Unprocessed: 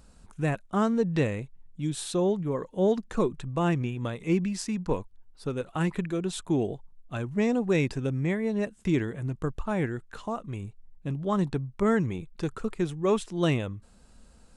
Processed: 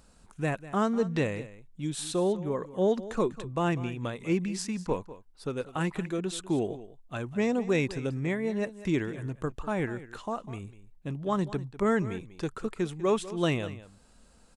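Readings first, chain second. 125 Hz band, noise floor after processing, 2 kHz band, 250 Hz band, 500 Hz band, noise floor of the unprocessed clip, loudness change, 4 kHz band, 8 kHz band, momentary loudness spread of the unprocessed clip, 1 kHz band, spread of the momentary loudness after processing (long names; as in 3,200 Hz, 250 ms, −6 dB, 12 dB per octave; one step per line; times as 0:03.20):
−4.0 dB, −58 dBFS, 0.0 dB, −2.5 dB, −1.0 dB, −56 dBFS, −2.0 dB, 0.0 dB, 0.0 dB, 10 LU, 0.0 dB, 11 LU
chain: low-shelf EQ 210 Hz −6 dB
on a send: single-tap delay 197 ms −16 dB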